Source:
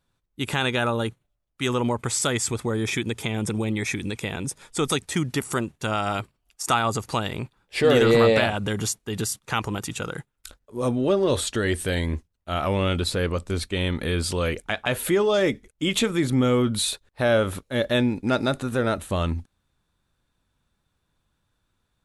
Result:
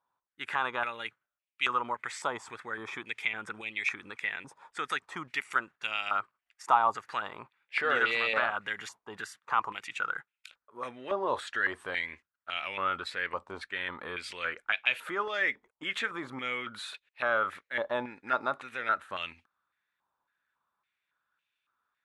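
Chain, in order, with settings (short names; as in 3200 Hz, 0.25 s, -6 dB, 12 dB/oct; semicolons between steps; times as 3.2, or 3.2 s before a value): stepped band-pass 3.6 Hz 960–2500 Hz; gain +5 dB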